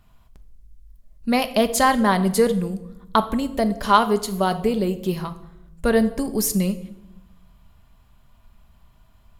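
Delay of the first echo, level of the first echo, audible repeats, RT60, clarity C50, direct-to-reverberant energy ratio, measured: no echo, no echo, no echo, 0.85 s, 14.5 dB, 9.0 dB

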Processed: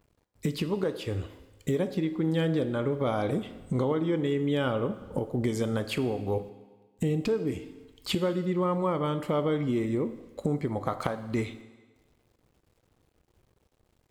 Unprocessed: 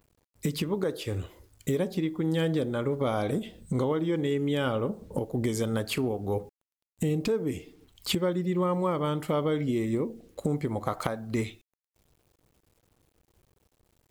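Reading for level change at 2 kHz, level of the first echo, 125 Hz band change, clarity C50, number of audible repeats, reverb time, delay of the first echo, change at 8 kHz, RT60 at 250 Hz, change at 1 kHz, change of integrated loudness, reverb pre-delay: -0.5 dB, no echo, 0.0 dB, 13.0 dB, no echo, 1.4 s, no echo, -5.0 dB, 1.3 s, 0.0 dB, 0.0 dB, 12 ms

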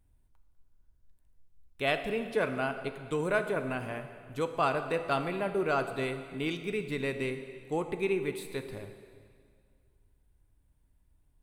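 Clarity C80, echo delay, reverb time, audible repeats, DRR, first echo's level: 10.0 dB, no echo, 2.1 s, no echo, 7.5 dB, no echo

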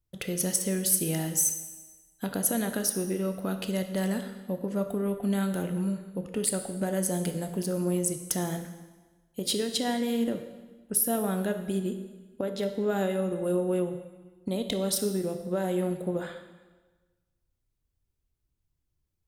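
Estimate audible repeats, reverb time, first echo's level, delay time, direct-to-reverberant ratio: no echo, 1.3 s, no echo, no echo, 7.0 dB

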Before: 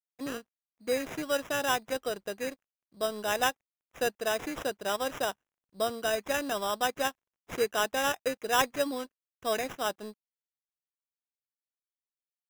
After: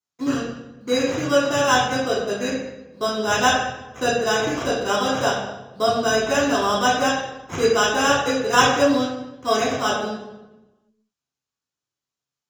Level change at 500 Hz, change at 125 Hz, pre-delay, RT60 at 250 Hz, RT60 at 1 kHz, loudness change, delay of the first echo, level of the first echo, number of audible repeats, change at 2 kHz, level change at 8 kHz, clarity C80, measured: +10.5 dB, +18.5 dB, 3 ms, 1.4 s, 0.95 s, +10.5 dB, no echo, no echo, no echo, +10.5 dB, +10.0 dB, 5.0 dB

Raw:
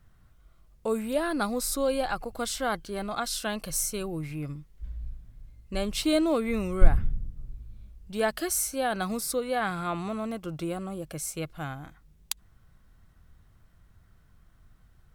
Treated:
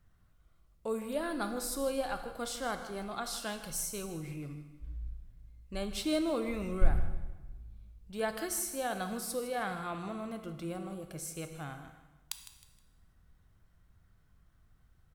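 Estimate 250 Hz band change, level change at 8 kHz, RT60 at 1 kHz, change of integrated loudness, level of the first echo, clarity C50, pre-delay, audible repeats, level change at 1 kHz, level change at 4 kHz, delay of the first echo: -7.0 dB, -7.0 dB, 1.2 s, -7.0 dB, -14.0 dB, 8.5 dB, 7 ms, 3, -6.5 dB, -6.5 dB, 157 ms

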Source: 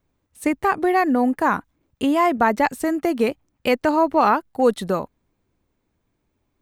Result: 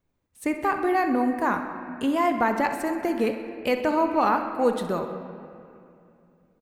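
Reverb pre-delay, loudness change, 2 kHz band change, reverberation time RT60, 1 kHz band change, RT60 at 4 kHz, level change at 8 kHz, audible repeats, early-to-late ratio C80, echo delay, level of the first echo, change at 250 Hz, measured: 4 ms, -4.5 dB, -4.0 dB, 2.6 s, -4.5 dB, 1.9 s, -5.0 dB, 1, 8.0 dB, 64 ms, -13.0 dB, -4.0 dB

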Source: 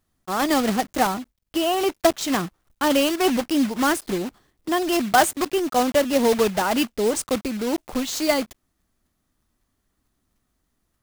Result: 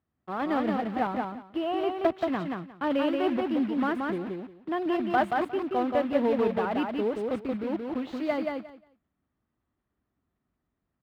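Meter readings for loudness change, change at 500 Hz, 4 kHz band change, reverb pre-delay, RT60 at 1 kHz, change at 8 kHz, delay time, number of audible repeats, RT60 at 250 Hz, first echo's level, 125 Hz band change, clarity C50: -7.0 dB, -5.5 dB, -15.5 dB, no reverb, no reverb, under -30 dB, 178 ms, 3, no reverb, -3.5 dB, -5.0 dB, no reverb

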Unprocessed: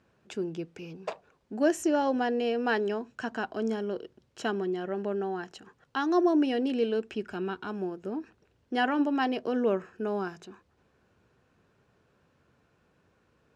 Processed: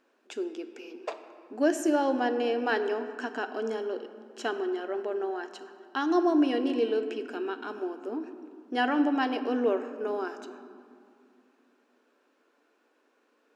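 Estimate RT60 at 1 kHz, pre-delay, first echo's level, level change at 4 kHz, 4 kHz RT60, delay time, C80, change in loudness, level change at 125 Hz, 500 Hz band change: 2.3 s, 7 ms, no echo, +0.5 dB, 1.3 s, no echo, 11.0 dB, +0.5 dB, under -15 dB, +0.5 dB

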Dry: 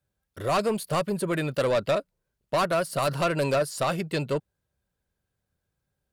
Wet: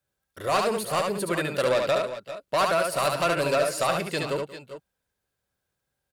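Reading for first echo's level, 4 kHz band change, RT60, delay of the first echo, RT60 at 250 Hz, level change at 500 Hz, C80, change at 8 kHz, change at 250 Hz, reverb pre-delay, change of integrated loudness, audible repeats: -4.0 dB, +3.5 dB, no reverb, 71 ms, no reverb, +1.0 dB, no reverb, +3.5 dB, -2.5 dB, no reverb, +1.5 dB, 3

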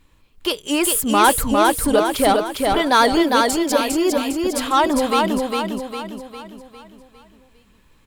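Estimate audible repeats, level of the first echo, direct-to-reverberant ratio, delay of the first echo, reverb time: 5, -3.0 dB, no reverb, 404 ms, no reverb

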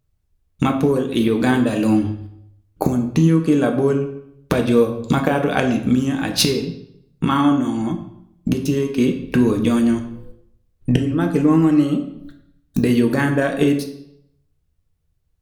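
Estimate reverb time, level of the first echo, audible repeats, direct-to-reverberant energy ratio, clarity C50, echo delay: 0.75 s, no echo, no echo, 4.0 dB, 9.5 dB, no echo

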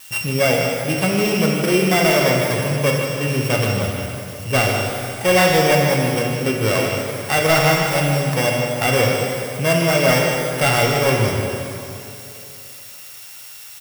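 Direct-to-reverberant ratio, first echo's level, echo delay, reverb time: -1.5 dB, -8.0 dB, 154 ms, 2.8 s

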